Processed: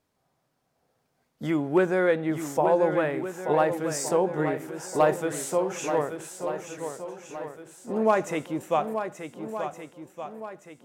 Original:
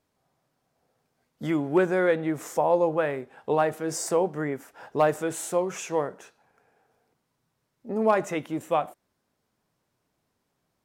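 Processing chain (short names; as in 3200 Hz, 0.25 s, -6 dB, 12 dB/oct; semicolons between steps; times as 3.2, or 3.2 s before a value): swung echo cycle 1.467 s, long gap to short 1.5:1, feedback 38%, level -8.5 dB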